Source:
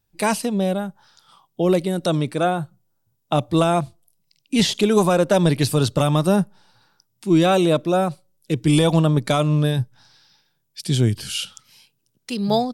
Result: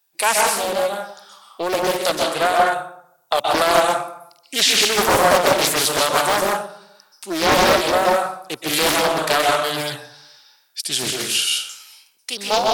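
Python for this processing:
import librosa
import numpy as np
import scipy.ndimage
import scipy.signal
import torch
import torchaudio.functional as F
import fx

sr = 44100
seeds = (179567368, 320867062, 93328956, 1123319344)

y = scipy.signal.sosfilt(scipy.signal.butter(2, 720.0, 'highpass', fs=sr, output='sos'), x)
y = fx.high_shelf(y, sr, hz=7200.0, db=6.5)
y = fx.rev_plate(y, sr, seeds[0], rt60_s=0.7, hf_ratio=0.65, predelay_ms=115, drr_db=-1.0)
y = fx.doppler_dist(y, sr, depth_ms=0.6)
y = y * librosa.db_to_amplitude(5.0)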